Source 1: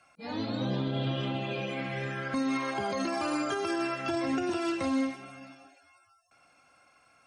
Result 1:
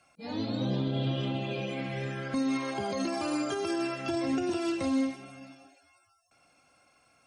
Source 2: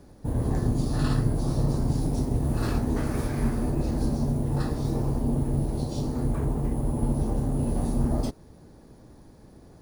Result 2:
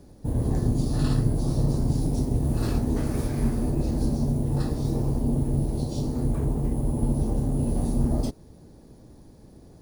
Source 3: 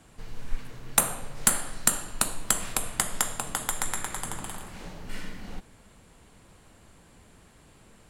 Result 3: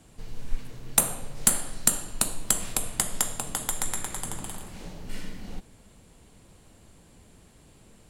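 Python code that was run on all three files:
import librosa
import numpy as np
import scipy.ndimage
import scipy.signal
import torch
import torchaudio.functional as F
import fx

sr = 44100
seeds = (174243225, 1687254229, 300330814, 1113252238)

y = fx.peak_eq(x, sr, hz=1400.0, db=-6.5, octaves=1.8)
y = y * 10.0 ** (1.5 / 20.0)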